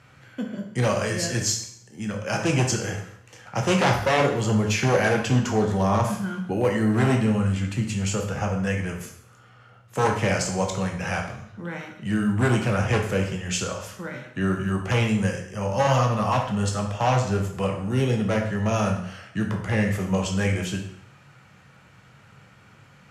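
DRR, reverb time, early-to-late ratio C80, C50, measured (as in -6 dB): 1.5 dB, 0.65 s, 9.5 dB, 6.5 dB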